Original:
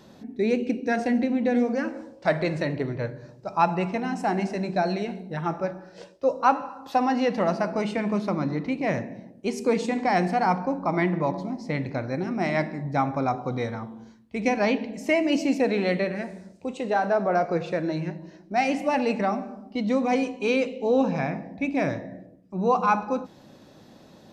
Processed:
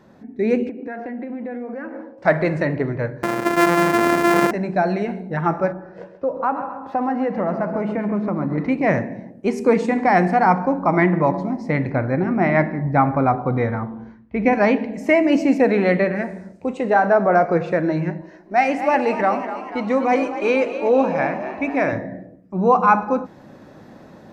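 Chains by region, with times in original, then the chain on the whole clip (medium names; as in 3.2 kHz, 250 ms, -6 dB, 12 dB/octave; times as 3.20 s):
0.69–2.18 s: high-pass 250 Hz + compression, threshold -34 dBFS + distance through air 310 m
3.23–4.51 s: sorted samples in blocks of 128 samples + high-pass 240 Hz + level flattener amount 70%
5.72–8.58 s: low-pass 1.2 kHz 6 dB/octave + compression 2:1, threshold -30 dBFS + feedback delay 134 ms, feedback 41%, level -11 dB
11.92–14.53 s: low-pass 3.3 kHz + bass shelf 69 Hz +10.5 dB
18.21–21.93 s: peaking EQ 140 Hz -10 dB 1.9 oct + frequency-shifting echo 245 ms, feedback 59%, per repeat +57 Hz, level -11.5 dB
whole clip: resonant high shelf 2.5 kHz -8 dB, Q 1.5; level rider gain up to 7.5 dB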